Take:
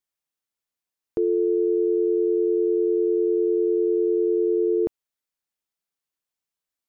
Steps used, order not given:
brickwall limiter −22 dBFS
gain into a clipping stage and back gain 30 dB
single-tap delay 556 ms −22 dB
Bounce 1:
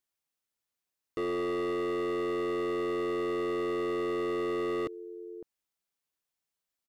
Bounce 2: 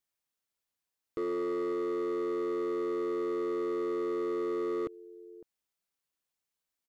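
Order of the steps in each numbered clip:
single-tap delay, then gain into a clipping stage and back, then brickwall limiter
brickwall limiter, then single-tap delay, then gain into a clipping stage and back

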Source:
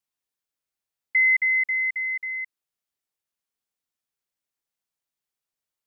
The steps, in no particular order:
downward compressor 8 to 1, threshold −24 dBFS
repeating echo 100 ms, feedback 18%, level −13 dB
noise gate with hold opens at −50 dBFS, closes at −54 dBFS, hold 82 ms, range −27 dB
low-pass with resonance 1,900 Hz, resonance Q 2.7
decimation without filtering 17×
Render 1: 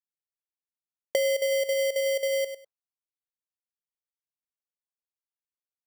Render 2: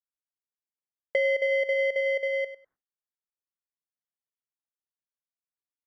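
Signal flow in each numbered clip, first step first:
repeating echo, then noise gate with hold, then low-pass with resonance, then downward compressor, then decimation without filtering
repeating echo, then downward compressor, then decimation without filtering, then low-pass with resonance, then noise gate with hold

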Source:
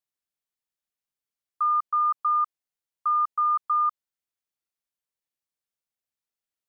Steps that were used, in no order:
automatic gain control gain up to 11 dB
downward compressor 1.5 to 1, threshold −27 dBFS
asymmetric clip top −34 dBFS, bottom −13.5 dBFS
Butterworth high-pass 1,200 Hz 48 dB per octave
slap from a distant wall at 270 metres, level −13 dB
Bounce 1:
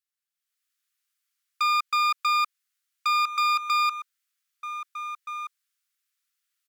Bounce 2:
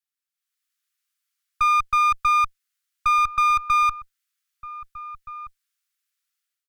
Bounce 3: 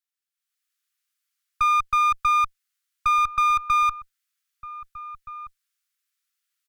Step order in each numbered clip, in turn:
slap from a distant wall, then downward compressor, then automatic gain control, then asymmetric clip, then Butterworth high-pass
Butterworth high-pass, then asymmetric clip, then downward compressor, then automatic gain control, then slap from a distant wall
downward compressor, then Butterworth high-pass, then asymmetric clip, then slap from a distant wall, then automatic gain control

